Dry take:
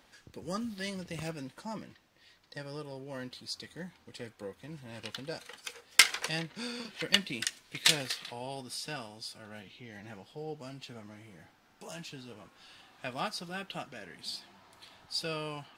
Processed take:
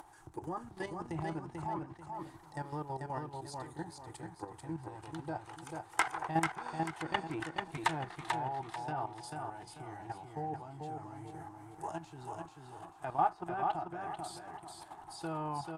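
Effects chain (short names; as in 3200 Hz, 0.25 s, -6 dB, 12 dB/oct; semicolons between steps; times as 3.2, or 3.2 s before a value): EQ curve 160 Hz 0 dB, 220 Hz -21 dB, 330 Hz +6 dB, 520 Hz -12 dB, 810 Hz +11 dB, 1200 Hz 0 dB, 2500 Hz -14 dB, 4800 Hz -14 dB, 9200 Hz +5 dB, 15000 Hz 0 dB; upward compressor, threshold -51 dBFS; high shelf 4700 Hz -3 dB; treble ducked by the level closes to 2400 Hz, closed at -36.5 dBFS; level quantiser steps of 11 dB; on a send: feedback echo 0.44 s, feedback 32%, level -4 dB; on the sum: gain +6.5 dB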